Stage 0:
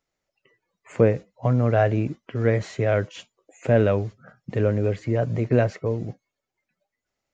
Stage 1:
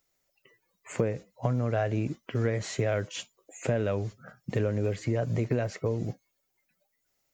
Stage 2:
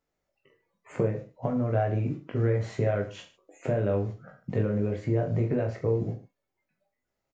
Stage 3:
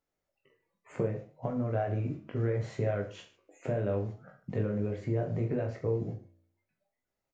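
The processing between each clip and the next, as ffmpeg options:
-af "aemphasis=mode=production:type=50fm,acompressor=threshold=-24dB:ratio=6"
-af "lowpass=f=1.1k:p=1,aecho=1:1:20|44|72.8|107.4|148.8:0.631|0.398|0.251|0.158|0.1"
-af "flanger=delay=9.7:depth=7.2:regen=-86:speed=0.7:shape=sinusoidal"

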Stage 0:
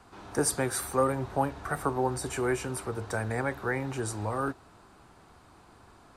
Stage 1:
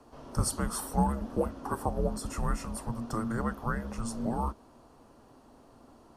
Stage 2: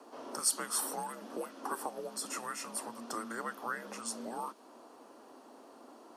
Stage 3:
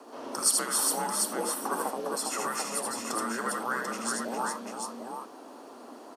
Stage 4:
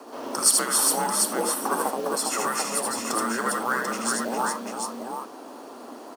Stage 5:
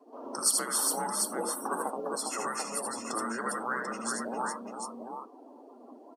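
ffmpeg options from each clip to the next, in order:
-af "equalizer=f=100:t=o:w=0.33:g=3,equalizer=f=160:t=o:w=0.33:g=-11,equalizer=f=250:t=o:w=0.33:g=-5,equalizer=f=2.5k:t=o:w=0.33:g=-11,equalizer=f=4k:t=o:w=0.33:g=-9,equalizer=f=8k:t=o:w=0.33:g=-8,afreqshift=-340"
-filter_complex "[0:a]acrossover=split=1600[a][b];[a]acompressor=threshold=-39dB:ratio=6[c];[c][b]amix=inputs=2:normalize=0,highpass=f=270:w=0.5412,highpass=f=270:w=1.3066,volume=3.5dB"
-af "aecho=1:1:78|406|740:0.668|0.562|0.562,volume=5dB"
-af "acrusher=bits=5:mode=log:mix=0:aa=0.000001,volume=5.5dB"
-af "afftdn=nr=21:nf=-36,volume=-7dB"

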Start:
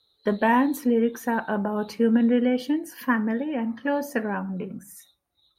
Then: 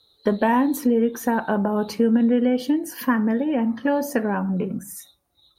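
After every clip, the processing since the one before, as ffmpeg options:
-af "equalizer=f=2.1k:t=o:w=1.5:g=-4.5,acompressor=threshold=-29dB:ratio=2,volume=8.5dB"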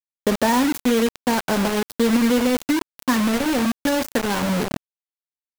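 -af "acrusher=bits=3:mix=0:aa=0.000001"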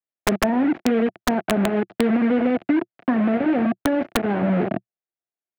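-filter_complex "[0:a]highpass=120,equalizer=f=120:t=q:w=4:g=3,equalizer=f=190:t=q:w=4:g=4,equalizer=f=350:t=q:w=4:g=8,equalizer=f=680:t=q:w=4:g=10,equalizer=f=1k:t=q:w=4:g=-6,lowpass=f=2.3k:w=0.5412,lowpass=f=2.3k:w=1.3066,acrossover=split=400|820[a][b][c];[a]acompressor=threshold=-18dB:ratio=4[d];[b]acompressor=threshold=-28dB:ratio=4[e];[c]acompressor=threshold=-31dB:ratio=4[f];[d][e][f]amix=inputs=3:normalize=0,aeval=exprs='(mod(2.99*val(0)+1,2)-1)/2.99':c=same"

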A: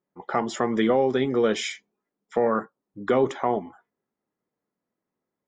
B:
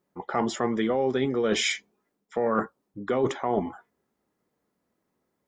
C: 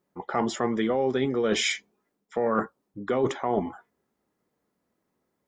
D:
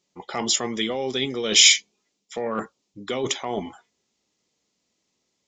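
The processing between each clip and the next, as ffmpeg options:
-af "areverse,acompressor=threshold=-30dB:ratio=6,areverse,equalizer=f=65:t=o:w=0.48:g=10.5,volume=7.5dB"
-af anull
-af "aexciter=amount=8.3:drive=2.9:freq=2.3k,aresample=16000,aresample=44100,volume=-2.5dB"

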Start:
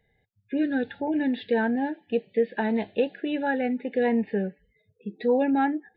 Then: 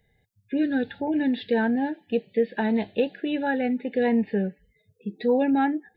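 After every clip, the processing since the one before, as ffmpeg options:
-af "bass=f=250:g=4,treble=f=4k:g=8"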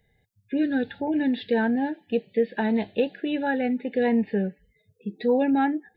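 -af anull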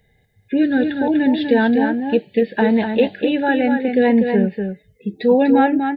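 -af "aecho=1:1:245:0.501,volume=7.5dB"

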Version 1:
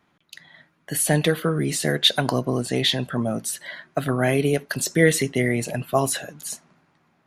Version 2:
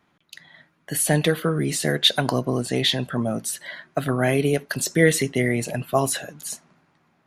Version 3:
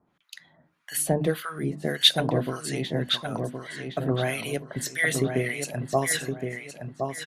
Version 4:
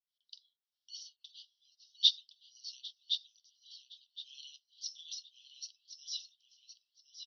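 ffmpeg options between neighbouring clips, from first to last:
-af anull
-filter_complex "[0:a]bandreject=f=50:t=h:w=6,bandreject=f=100:t=h:w=6,bandreject=f=150:t=h:w=6,bandreject=f=200:t=h:w=6,bandreject=f=250:t=h:w=6,bandreject=f=300:t=h:w=6,acrossover=split=980[a][b];[a]aeval=exprs='val(0)*(1-1/2+1/2*cos(2*PI*1.7*n/s))':c=same[c];[b]aeval=exprs='val(0)*(1-1/2-1/2*cos(2*PI*1.7*n/s))':c=same[d];[c][d]amix=inputs=2:normalize=0,asplit=2[e][f];[f]adelay=1067,lowpass=f=3.7k:p=1,volume=-5.5dB,asplit=2[g][h];[h]adelay=1067,lowpass=f=3.7k:p=1,volume=0.31,asplit=2[i][j];[j]adelay=1067,lowpass=f=3.7k:p=1,volume=0.31,asplit=2[k][l];[l]adelay=1067,lowpass=f=3.7k:p=1,volume=0.31[m];[g][i][k][m]amix=inputs=4:normalize=0[n];[e][n]amix=inputs=2:normalize=0"
-af "asuperpass=centerf=4100:order=20:qfactor=1.4,aderivative,crystalizer=i=2.5:c=0,volume=-7dB"

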